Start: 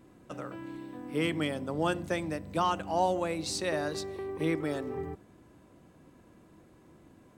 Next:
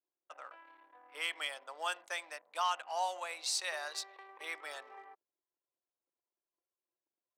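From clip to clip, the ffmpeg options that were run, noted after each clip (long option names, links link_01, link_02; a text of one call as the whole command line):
ffmpeg -i in.wav -af "anlmdn=0.0398,highpass=frequency=730:width=0.5412,highpass=frequency=730:width=1.3066,adynamicequalizer=threshold=0.00501:dfrequency=1900:dqfactor=0.7:tfrequency=1900:tqfactor=0.7:attack=5:release=100:ratio=0.375:range=2.5:mode=boostabove:tftype=highshelf,volume=-4dB" out.wav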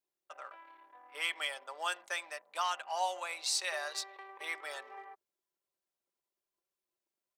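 ffmpeg -i in.wav -af "aecho=1:1:5.1:0.35,volume=1.5dB" out.wav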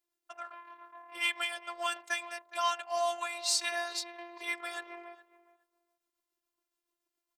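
ffmpeg -i in.wav -filter_complex "[0:a]tremolo=f=7.1:d=0.37,afftfilt=real='hypot(re,im)*cos(PI*b)':imag='0':win_size=512:overlap=0.75,asplit=2[link_01][link_02];[link_02]adelay=415,lowpass=frequency=1500:poles=1,volume=-16.5dB,asplit=2[link_03][link_04];[link_04]adelay=415,lowpass=frequency=1500:poles=1,volume=0.17[link_05];[link_01][link_03][link_05]amix=inputs=3:normalize=0,volume=8dB" out.wav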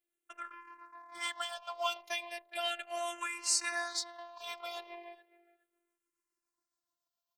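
ffmpeg -i in.wav -filter_complex "[0:a]asplit=2[link_01][link_02];[link_02]aeval=exprs='sgn(val(0))*max(abs(val(0))-0.00531,0)':channel_layout=same,volume=-11dB[link_03];[link_01][link_03]amix=inputs=2:normalize=0,asplit=2[link_04][link_05];[link_05]afreqshift=-0.36[link_06];[link_04][link_06]amix=inputs=2:normalize=1" out.wav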